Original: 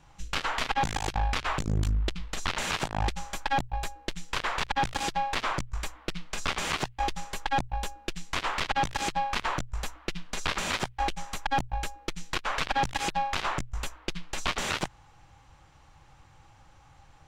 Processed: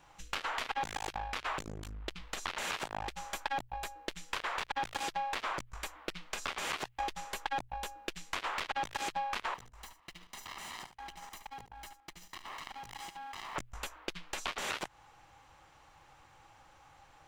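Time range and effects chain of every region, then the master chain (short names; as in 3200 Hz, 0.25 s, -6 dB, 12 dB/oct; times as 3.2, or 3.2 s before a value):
9.54–13.56 minimum comb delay 0.99 ms + level quantiser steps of 22 dB + echo 73 ms -11.5 dB
whole clip: high shelf 11000 Hz +11.5 dB; compressor, threshold -31 dBFS; tone controls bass -11 dB, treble -5 dB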